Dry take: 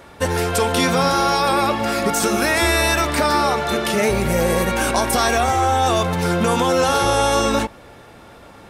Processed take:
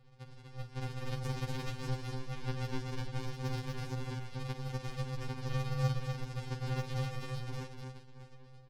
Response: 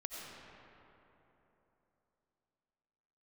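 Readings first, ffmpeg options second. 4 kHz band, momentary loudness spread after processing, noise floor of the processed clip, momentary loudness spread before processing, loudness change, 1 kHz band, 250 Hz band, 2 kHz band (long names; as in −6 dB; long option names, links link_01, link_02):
−24.0 dB, 12 LU, −55 dBFS, 3 LU, −21.0 dB, −28.5 dB, −21.5 dB, −26.0 dB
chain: -filter_complex "[0:a]aeval=exprs='val(0)+0.00355*sin(2*PI*2400*n/s)':channel_layout=same,equalizer=frequency=1100:width=0.42:gain=-5,acompressor=threshold=-37dB:ratio=6,alimiter=level_in=7dB:limit=-24dB:level=0:latency=1:release=58,volume=-7dB,dynaudnorm=framelen=150:gausssize=11:maxgain=6dB,bass=frequency=250:gain=-8,treble=frequency=4000:gain=14,aresample=11025,acrusher=samples=34:mix=1:aa=0.000001,aresample=44100,aeval=exprs='0.0794*(cos(1*acos(clip(val(0)/0.0794,-1,1)))-cos(1*PI/2))+0.0282*(cos(4*acos(clip(val(0)/0.0794,-1,1)))-cos(4*PI/2))+0.0158*(cos(6*acos(clip(val(0)/0.0794,-1,1)))-cos(6*PI/2))+0.01*(cos(7*acos(clip(val(0)/0.0794,-1,1)))-cos(7*PI/2))':channel_layout=same,asplit=2[link_01][link_02];[link_02]aecho=0:1:50|245:0.237|0.631[link_03];[link_01][link_03]amix=inputs=2:normalize=0,afftfilt=real='re*2.45*eq(mod(b,6),0)':imag='im*2.45*eq(mod(b,6),0)':win_size=2048:overlap=0.75,volume=1dB"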